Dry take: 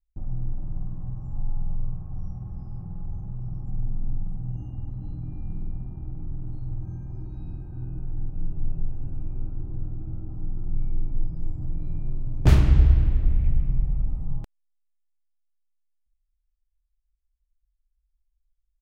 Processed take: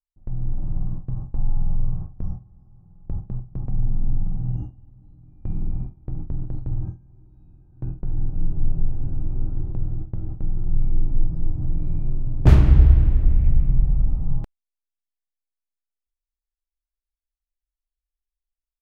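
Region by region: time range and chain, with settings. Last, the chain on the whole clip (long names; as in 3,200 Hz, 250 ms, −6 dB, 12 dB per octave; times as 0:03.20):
0:09.61–0:10.83: running median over 25 samples + parametric band 260 Hz −9 dB 0.28 octaves
whole clip: noise gate with hold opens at −23 dBFS; high-shelf EQ 2,500 Hz −9.5 dB; automatic gain control gain up to 5 dB; level +1 dB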